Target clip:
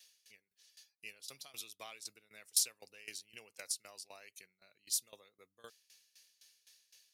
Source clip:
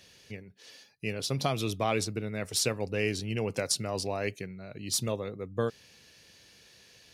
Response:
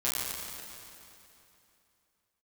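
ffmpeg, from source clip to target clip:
-af "aderivative,aeval=exprs='val(0)*pow(10,-19*if(lt(mod(3.9*n/s,1),2*abs(3.9)/1000),1-mod(3.9*n/s,1)/(2*abs(3.9)/1000),(mod(3.9*n/s,1)-2*abs(3.9)/1000)/(1-2*abs(3.9)/1000))/20)':c=same,volume=1.5dB"

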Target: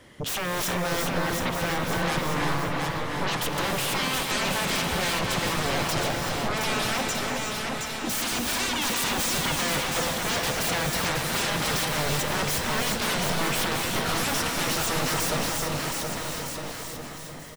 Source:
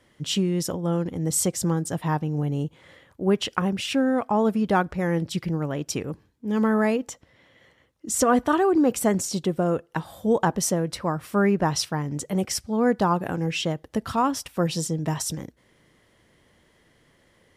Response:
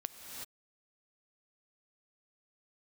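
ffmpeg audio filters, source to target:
-filter_complex "[0:a]asettb=1/sr,asplit=3[a][b][c];[a]atrim=end=1.214[d];[b]atrim=start=1.21:end=2.03,asetpts=PTS-STARTPTS,afade=t=in:d=0.004:c=qsin,afade=t=out:st=0.816:d=0.004:c=qsin,lowpass=f=1.2k:w=0.5412,lowpass=f=1.2k:w=1.3066[e];[c]atrim=start=2.026[f];[d][e]acrossfade=d=0.004:c1=hsin:c2=qsin[g];[g][f]acrossfade=d=0.004:c1=qsin:c2=hsin,aeval=exprs='0.126*sin(PI/2*5.01*val(0)/0.126)':c=same,aecho=1:1:720|1260|1665|1969|2197:0.631|0.398|0.251|0.158|0.1[h];[1:a]atrim=start_sample=2205[i];[h][i]afir=irnorm=-1:irlink=0,volume=-6dB"

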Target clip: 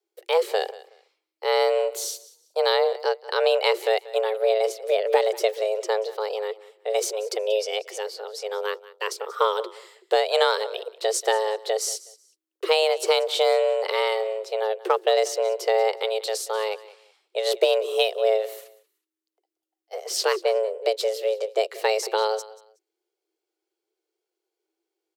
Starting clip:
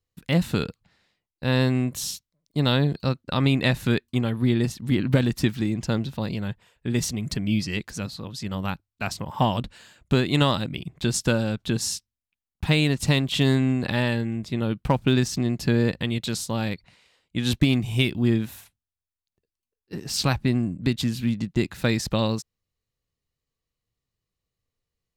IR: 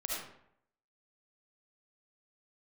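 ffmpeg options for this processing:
-af "afreqshift=320,aecho=1:1:185|370:0.112|0.0258"

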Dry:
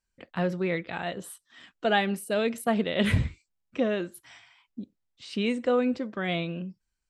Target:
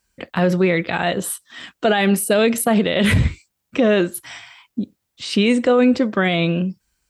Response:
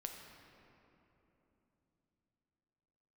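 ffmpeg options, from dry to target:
-af "highpass=43,highshelf=f=8.7k:g=6,alimiter=level_in=21dB:limit=-1dB:release=50:level=0:latency=1,volume=-6.5dB"

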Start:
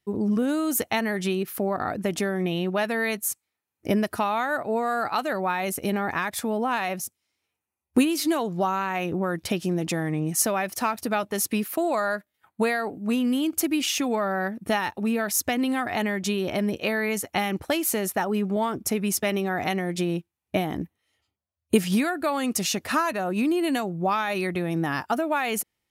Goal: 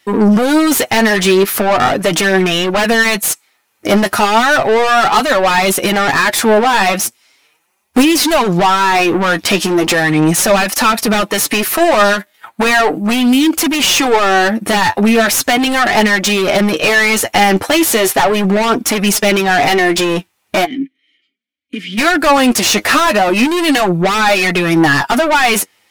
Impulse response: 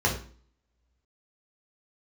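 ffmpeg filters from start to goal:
-filter_complex "[0:a]asplit=2[a][b];[b]highpass=f=720:p=1,volume=32dB,asoftclip=type=tanh:threshold=-5dB[c];[a][c]amix=inputs=2:normalize=0,lowpass=f=7k:p=1,volume=-6dB,asplit=3[d][e][f];[d]afade=t=out:st=20.64:d=0.02[g];[e]asplit=3[h][i][j];[h]bandpass=f=270:t=q:w=8,volume=0dB[k];[i]bandpass=f=2.29k:t=q:w=8,volume=-6dB[l];[j]bandpass=f=3.01k:t=q:w=8,volume=-9dB[m];[k][l][m]amix=inputs=3:normalize=0,afade=t=in:st=20.64:d=0.02,afade=t=out:st=21.97:d=0.02[n];[f]afade=t=in:st=21.97:d=0.02[o];[g][n][o]amix=inputs=3:normalize=0,flanger=delay=3.4:depth=7.2:regen=27:speed=0.37:shape=triangular,volume=5dB"

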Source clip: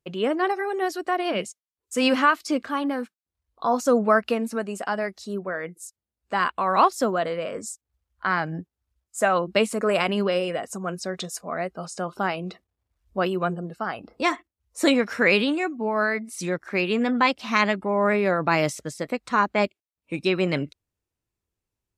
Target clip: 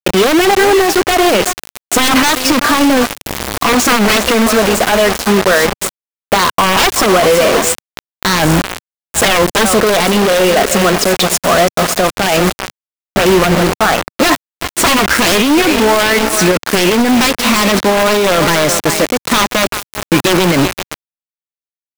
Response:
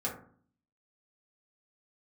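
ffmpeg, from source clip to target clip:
-filter_complex "[0:a]aeval=exprs='val(0)+0.5*0.0944*sgn(val(0))':c=same,asettb=1/sr,asplit=3[a][b][c];[a]atrim=end=3.034[d];[b]atrim=start=3.03:end=5.23,asetpts=PTS-STARTPTS,afade=t=in:d=0.004:c=qsin,afade=t=out:st=2.196:d=0.004:c=qsin,highpass=f=110:p=1[e];[c]atrim=start=5.226[f];[d][e]acrossfade=d=0.004:c1=hsin:c2=qsin[g];[g][f]acrossfade=d=0.004:c1=qsin:c2=hsin,aecho=1:1:383|766|1149|1532:0.106|0.0508|0.0244|0.0117,acrusher=bits=3:mix=0:aa=0.000001,adynamicequalizer=threshold=0.0158:dfrequency=150:dqfactor=1.2:tfrequency=150:tqfactor=1.2:attack=5:release=100:ratio=0.375:range=3:mode=cutabove:tftype=bell,aeval=exprs='(mod(3.76*val(0)+1,2)-1)/3.76':c=same,highshelf=f=5.6k:g=-4.5,alimiter=level_in=18dB:limit=-1dB:release=50:level=0:latency=1,volume=-4dB"

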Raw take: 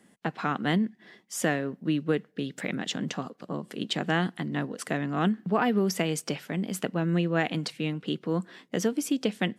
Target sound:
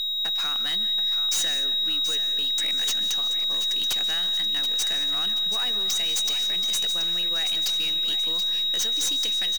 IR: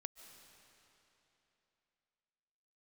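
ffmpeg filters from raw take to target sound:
-filter_complex "[0:a]agate=range=-33dB:threshold=-52dB:ratio=16:detection=peak,equalizer=f=6.2k:t=o:w=0.52:g=14.5,acompressor=threshold=-26dB:ratio=6,aeval=exprs='val(0)+0.0282*sin(2*PI*3800*n/s)':c=same,bandpass=f=7.1k:t=q:w=0.51:csg=0,aeval=exprs='0.168*sin(PI/2*3.55*val(0)/0.168)':c=same,aeval=exprs='0.178*(cos(1*acos(clip(val(0)/0.178,-1,1)))-cos(1*PI/2))+0.00447*(cos(4*acos(clip(val(0)/0.178,-1,1)))-cos(4*PI/2))+0.00501*(cos(6*acos(clip(val(0)/0.178,-1,1)))-cos(6*PI/2))+0.00631*(cos(7*acos(clip(val(0)/0.178,-1,1)))-cos(7*PI/2))+0.0126*(cos(8*acos(clip(val(0)/0.178,-1,1)))-cos(8*PI/2))':c=same,aecho=1:1:729|1458|2187|2916|3645:0.299|0.143|0.0688|0.033|0.0158[a];[1:a]atrim=start_sample=2205,afade=t=out:st=0.27:d=0.01,atrim=end_sample=12348[b];[a][b]afir=irnorm=-1:irlink=0,volume=-1dB"

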